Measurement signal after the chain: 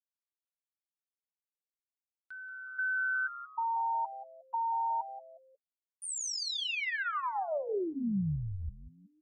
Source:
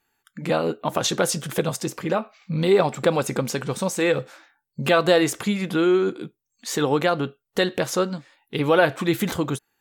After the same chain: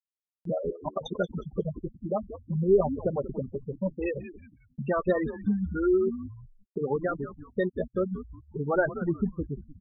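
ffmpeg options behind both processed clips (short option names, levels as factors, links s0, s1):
-filter_complex "[0:a]afftfilt=real='re*gte(hypot(re,im),0.316)':imag='im*gte(hypot(re,im),0.316)':win_size=1024:overlap=0.75,lowshelf=f=110:g=5.5,aecho=1:1:5:0.51,acompressor=mode=upward:threshold=0.0126:ratio=2.5,asplit=4[s0][s1][s2][s3];[s1]adelay=181,afreqshift=-130,volume=0.237[s4];[s2]adelay=362,afreqshift=-260,volume=0.0804[s5];[s3]adelay=543,afreqshift=-390,volume=0.0275[s6];[s0][s4][s5][s6]amix=inputs=4:normalize=0,volume=0.447"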